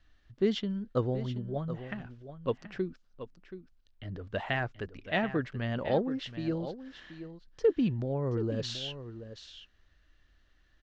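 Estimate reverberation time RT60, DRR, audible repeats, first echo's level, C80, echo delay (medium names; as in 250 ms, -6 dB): no reverb, no reverb, 1, -12.0 dB, no reverb, 728 ms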